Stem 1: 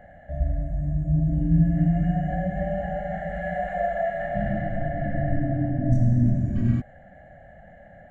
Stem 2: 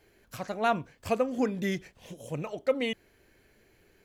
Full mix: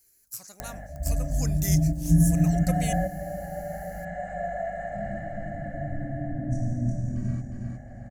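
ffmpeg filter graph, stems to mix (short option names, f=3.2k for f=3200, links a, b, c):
-filter_complex "[0:a]aeval=exprs='val(0)+0.00631*(sin(2*PI*50*n/s)+sin(2*PI*2*50*n/s)/2+sin(2*PI*3*50*n/s)/3+sin(2*PI*4*50*n/s)/4+sin(2*PI*5*50*n/s)/5)':c=same,aemphasis=mode=reproduction:type=50fm,acompressor=mode=upward:threshold=-33dB:ratio=2.5,adelay=600,volume=-0.5dB,asplit=2[a][b];[b]volume=-13.5dB[c];[1:a]equalizer=f=580:w=0.43:g=-10,volume=-3.5dB,afade=t=in:st=1.17:d=0.36:silence=0.375837,asplit=2[d][e];[e]apad=whole_len=383735[f];[a][f]sidechaingate=range=-9dB:threshold=-56dB:ratio=16:detection=peak[g];[c]aecho=0:1:360|720|1080|1440|1800:1|0.34|0.116|0.0393|0.0134[h];[g][d][h]amix=inputs=3:normalize=0,aexciter=amount=11.4:drive=7.3:freq=5k,equalizer=f=1.1k:w=0.54:g=3"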